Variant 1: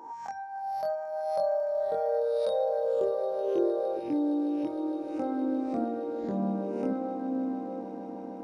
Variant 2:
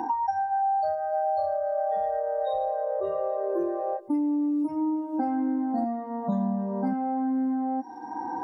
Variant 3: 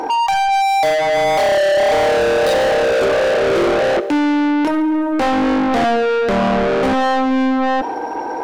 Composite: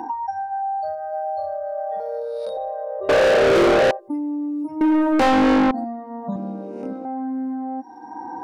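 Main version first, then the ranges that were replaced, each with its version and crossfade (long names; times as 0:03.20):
2
0:02.00–0:02.57: punch in from 1
0:03.09–0:03.91: punch in from 3
0:04.81–0:05.71: punch in from 3
0:06.36–0:07.05: punch in from 1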